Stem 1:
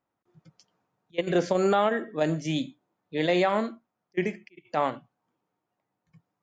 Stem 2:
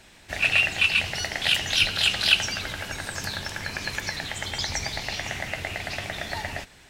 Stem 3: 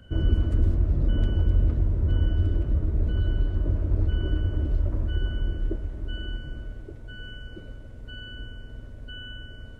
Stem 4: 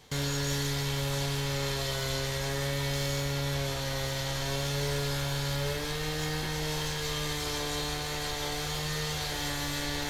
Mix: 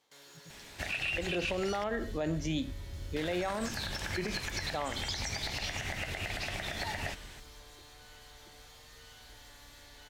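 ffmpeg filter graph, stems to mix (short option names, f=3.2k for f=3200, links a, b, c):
-filter_complex "[0:a]volume=-0.5dB[a];[1:a]acompressor=threshold=-30dB:ratio=2,adelay=500,volume=-0.5dB,asplit=3[b][c][d];[b]atrim=end=1.84,asetpts=PTS-STARTPTS,afade=t=out:st=1.836:d=0.004:c=hsin[e];[c]atrim=start=1.84:end=3.16,asetpts=PTS-STARTPTS,volume=0[f];[d]atrim=start=3.16,asetpts=PTS-STARTPTS,afade=t=in:d=0.004:c=hsin[g];[e][f][g]concat=n=3:v=0:a=1[h];[2:a]adelay=900,volume=-19.5dB[i];[3:a]highpass=460,asoftclip=type=tanh:threshold=-35dB,volume=-16.5dB[j];[a][h][i][j]amix=inputs=4:normalize=0,alimiter=level_in=0.5dB:limit=-24dB:level=0:latency=1:release=84,volume=-0.5dB"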